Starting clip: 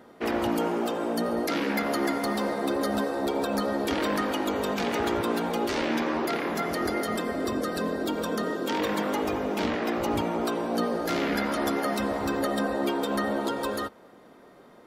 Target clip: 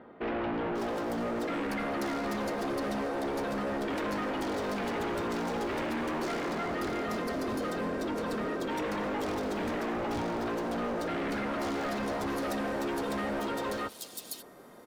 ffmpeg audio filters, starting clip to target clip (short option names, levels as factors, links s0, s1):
-filter_complex "[0:a]asetnsamples=n=441:p=0,asendcmd='11.73 highshelf g -2.5;13.35 highshelf g 11',highshelf=f=6100:g=-10.5,asoftclip=type=hard:threshold=0.0299,acrossover=split=3400[s0][s1];[s1]adelay=540[s2];[s0][s2]amix=inputs=2:normalize=0"